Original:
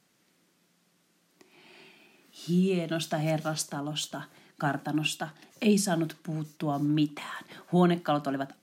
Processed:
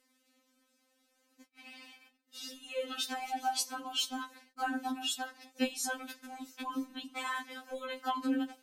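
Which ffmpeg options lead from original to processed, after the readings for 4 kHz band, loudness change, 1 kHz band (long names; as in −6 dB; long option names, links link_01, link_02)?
−0.5 dB, −7.5 dB, −2.0 dB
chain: -af "acompressor=threshold=-29dB:ratio=5,agate=range=-40dB:threshold=-55dB:ratio=16:detection=peak,acompressor=mode=upward:threshold=-47dB:ratio=2.5,afftfilt=real='re*3.46*eq(mod(b,12),0)':imag='im*3.46*eq(mod(b,12),0)':win_size=2048:overlap=0.75,volume=3.5dB"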